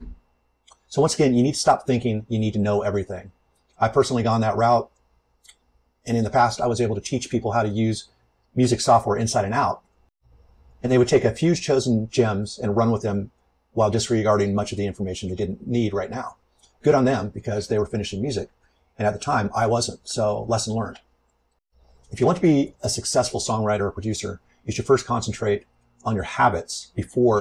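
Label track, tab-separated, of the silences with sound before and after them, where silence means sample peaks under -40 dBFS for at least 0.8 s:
9.780000	10.840000	silence
20.970000	22.120000	silence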